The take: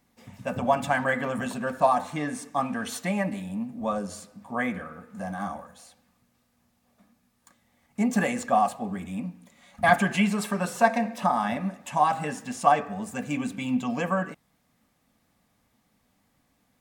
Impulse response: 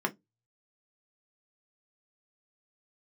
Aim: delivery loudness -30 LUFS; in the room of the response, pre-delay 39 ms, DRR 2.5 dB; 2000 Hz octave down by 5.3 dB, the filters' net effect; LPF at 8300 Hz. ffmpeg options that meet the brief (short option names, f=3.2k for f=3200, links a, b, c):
-filter_complex "[0:a]lowpass=8.3k,equalizer=f=2k:t=o:g=-7,asplit=2[a][b];[1:a]atrim=start_sample=2205,adelay=39[c];[b][c]afir=irnorm=-1:irlink=0,volume=-10dB[d];[a][d]amix=inputs=2:normalize=0,volume=-5dB"